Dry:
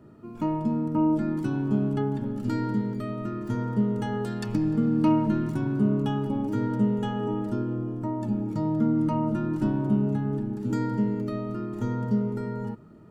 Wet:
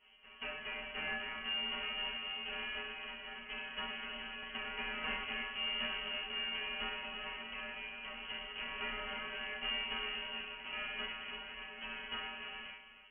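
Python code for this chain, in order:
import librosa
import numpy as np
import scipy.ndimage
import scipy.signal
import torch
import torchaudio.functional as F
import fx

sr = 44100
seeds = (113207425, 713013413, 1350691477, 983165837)

y = fx.halfwave_hold(x, sr)
y = scipy.signal.sosfilt(scipy.signal.butter(2, 52.0, 'highpass', fs=sr, output='sos'), y)
y = fx.low_shelf(y, sr, hz=120.0, db=-6.5)
y = fx.stiff_resonator(y, sr, f0_hz=93.0, decay_s=0.56, stiffness=0.002)
y = fx.freq_invert(y, sr, carrier_hz=3100)
y = fx.high_shelf(y, sr, hz=2200.0, db=-9.5)
y = y + 10.0 ** (-11.0 / 20.0) * np.pad(y, (int(306 * sr / 1000.0), 0))[:len(y)]
y = F.gain(torch.from_numpy(y), 1.5).numpy()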